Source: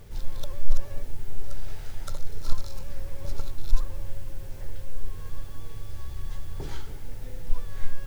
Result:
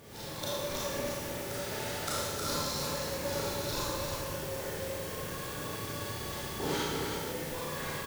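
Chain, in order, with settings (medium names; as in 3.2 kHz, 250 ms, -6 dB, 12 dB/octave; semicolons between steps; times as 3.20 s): high-pass 180 Hz 12 dB/octave; level rider gain up to 3 dB; on a send: delay 313 ms -5.5 dB; on the sum: Schroeder reverb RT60 1.3 s, combs from 26 ms, DRR -7.5 dB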